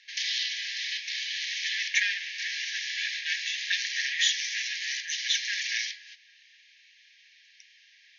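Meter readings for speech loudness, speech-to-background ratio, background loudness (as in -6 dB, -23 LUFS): -30.5 LUFS, 1.0 dB, -31.5 LUFS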